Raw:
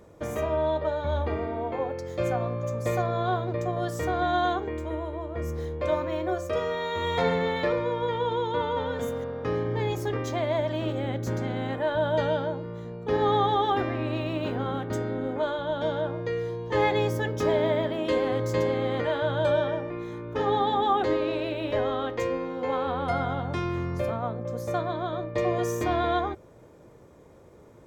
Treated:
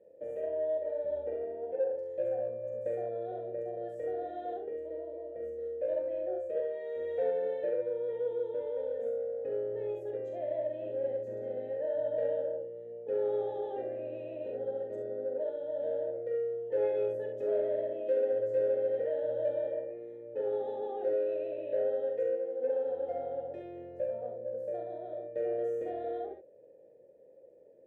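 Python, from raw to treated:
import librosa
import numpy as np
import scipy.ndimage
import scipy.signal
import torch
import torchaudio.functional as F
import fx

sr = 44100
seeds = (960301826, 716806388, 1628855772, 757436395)

p1 = fx.vowel_filter(x, sr, vowel='e')
p2 = fx.band_shelf(p1, sr, hz=2700.0, db=-15.0, octaves=2.7)
p3 = fx.room_early_taps(p2, sr, ms=(43, 67), db=(-5.0, -6.0))
p4 = 10.0 ** (-30.0 / 20.0) * np.tanh(p3 / 10.0 ** (-30.0 / 20.0))
p5 = p3 + (p4 * 10.0 ** (-11.0 / 20.0))
y = p5 * 10.0 ** (-1.0 / 20.0)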